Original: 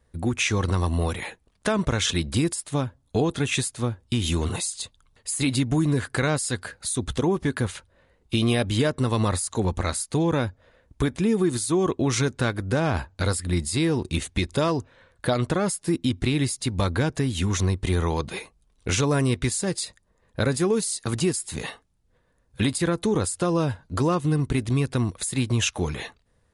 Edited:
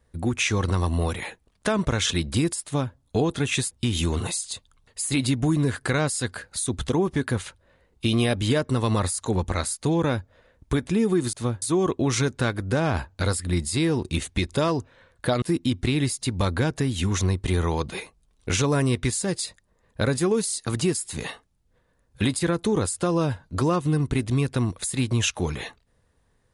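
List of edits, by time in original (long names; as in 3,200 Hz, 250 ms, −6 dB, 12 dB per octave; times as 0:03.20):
0:03.71–0:04.00: move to 0:11.62
0:15.42–0:15.81: remove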